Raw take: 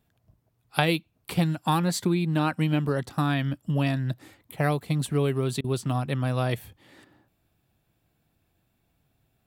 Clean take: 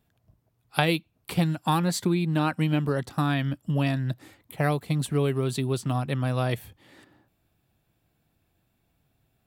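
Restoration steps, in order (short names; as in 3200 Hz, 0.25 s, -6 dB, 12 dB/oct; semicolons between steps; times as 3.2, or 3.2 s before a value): interpolate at 5.61, 31 ms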